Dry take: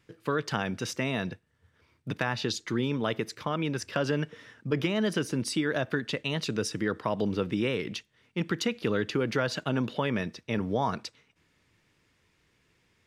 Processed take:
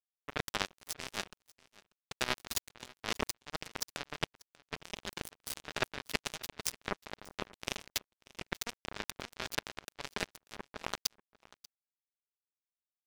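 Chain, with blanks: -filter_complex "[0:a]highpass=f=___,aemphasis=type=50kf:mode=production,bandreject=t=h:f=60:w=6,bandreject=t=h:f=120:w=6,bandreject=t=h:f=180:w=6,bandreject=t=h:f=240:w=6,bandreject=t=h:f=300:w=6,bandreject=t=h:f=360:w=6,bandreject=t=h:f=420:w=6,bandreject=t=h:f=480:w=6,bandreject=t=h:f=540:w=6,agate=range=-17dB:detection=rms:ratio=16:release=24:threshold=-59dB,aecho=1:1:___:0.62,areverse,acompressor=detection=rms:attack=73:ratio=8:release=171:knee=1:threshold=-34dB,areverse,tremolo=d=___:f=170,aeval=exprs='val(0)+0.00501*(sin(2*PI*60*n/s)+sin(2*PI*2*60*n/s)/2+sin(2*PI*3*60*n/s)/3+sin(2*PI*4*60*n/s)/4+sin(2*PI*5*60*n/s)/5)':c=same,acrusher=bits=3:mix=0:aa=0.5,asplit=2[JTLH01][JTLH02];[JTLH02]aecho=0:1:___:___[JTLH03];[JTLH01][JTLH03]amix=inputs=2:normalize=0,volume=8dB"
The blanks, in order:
88, 4.9, 0.261, 589, 0.075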